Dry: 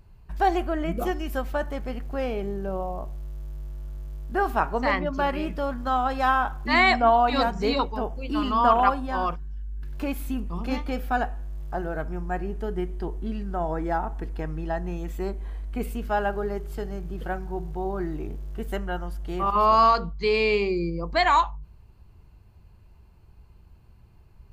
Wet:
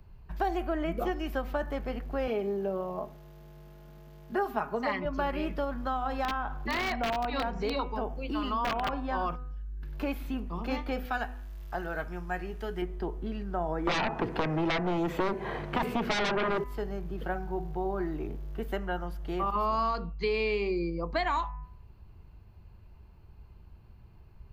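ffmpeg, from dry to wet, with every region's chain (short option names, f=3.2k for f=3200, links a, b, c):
-filter_complex "[0:a]asettb=1/sr,asplit=3[a][b][c];[a]atrim=end=2.274[d];[b]atrim=start=2.27:end=5.05,asetpts=PTS-STARTPTS,afade=t=in:d=0.004:c=qsin,afade=t=out:st=2.776:d=0.004:c=qsin,highpass=170,aecho=1:1:4.8:0.71,atrim=end_sample=122598[e];[c]atrim=start=5.046[f];[d][e]acrossfade=d=0.004:c1=hsin:c2=qsin[g];[g][f]acrossfade=d=0.004:c1=qsin:c2=hsin,asettb=1/sr,asplit=3[h][i][j];[h]atrim=end=5.644[k];[i]atrim=start=5.64:end=8.93,asetpts=PTS-STARTPTS,afade=t=in:d=0.004:c=qsin,afade=t=out:st=3.286:d=0.004:c=qsin,acompressor=threshold=-29dB:ratio=1.5:attack=3.2:release=140:knee=1:detection=peak,aeval=exprs='(mod(6.68*val(0)+1,2)-1)/6.68':c=same[l];[j]atrim=start=8.926[m];[k][l]acrossfade=d=0.004:c1=hsin:c2=qsin[n];[n][m]acrossfade=d=0.004:c1=qsin:c2=hsin,asettb=1/sr,asplit=3[o][p][q];[o]atrim=end=11.054[r];[p]atrim=start=11.05:end=12.82,asetpts=PTS-STARTPTS,afade=t=in:d=0.004:c=qsin,afade=t=out:st=1.766:d=0.004:c=qsin,tiltshelf=f=1.2k:g=-7.5,asplit=2[s][t];[t]adelay=17,volume=-14dB[u];[s][u]amix=inputs=2:normalize=0,atrim=end_sample=78057[v];[q]atrim=start=12.816[w];[r][v]acrossfade=d=0.004:c1=hsin:c2=qsin[x];[x][w]acrossfade=d=0.004:c1=qsin:c2=hsin,asettb=1/sr,asplit=3[y][z][aa];[y]atrim=end=13.874[ab];[z]atrim=start=13.87:end=16.64,asetpts=PTS-STARTPTS,afade=t=in:d=0.004:c=qsin,afade=t=out:st=2.766:d=0.004:c=qsin,highpass=f=120:w=0.5412,highpass=f=120:w=1.3066,aemphasis=mode=reproduction:type=75kf,aeval=exprs='0.178*sin(PI/2*6.31*val(0)/0.178)':c=same[ac];[aa]atrim=start=16.636[ad];[ab][ac]acrossfade=d=0.004:c1=hsin:c2=qsin[ae];[ae][ad]acrossfade=d=0.004:c1=qsin:c2=hsin,equalizer=f=8.6k:w=0.93:g=-10,bandreject=f=249.8:t=h:w=4,bandreject=f=499.6:t=h:w=4,bandreject=f=749.4:t=h:w=4,bandreject=f=999.2:t=h:w=4,bandreject=f=1.249k:t=h:w=4,bandreject=f=1.4988k:t=h:w=4,bandreject=f=1.7486k:t=h:w=4,bandreject=f=1.9984k:t=h:w=4,bandreject=f=2.2482k:t=h:w=4,bandreject=f=2.498k:t=h:w=4,bandreject=f=2.7478k:t=h:w=4,acrossover=split=97|300|6100[af][ag][ah][ai];[af]acompressor=threshold=-38dB:ratio=4[aj];[ag]acompressor=threshold=-41dB:ratio=4[ak];[ah]acompressor=threshold=-29dB:ratio=4[al];[ai]acompressor=threshold=-56dB:ratio=4[am];[aj][ak][al][am]amix=inputs=4:normalize=0"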